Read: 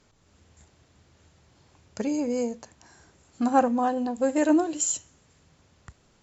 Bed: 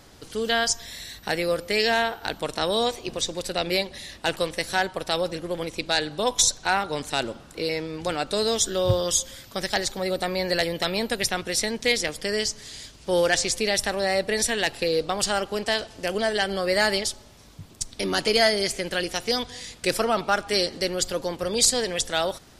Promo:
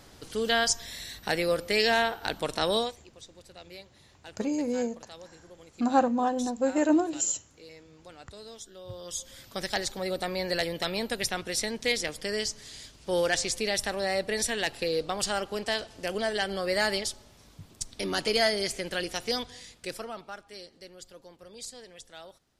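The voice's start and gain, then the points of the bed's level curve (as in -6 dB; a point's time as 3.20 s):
2.40 s, -2.0 dB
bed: 2.77 s -2 dB
3.04 s -22 dB
8.86 s -22 dB
9.41 s -5 dB
19.36 s -5 dB
20.53 s -22 dB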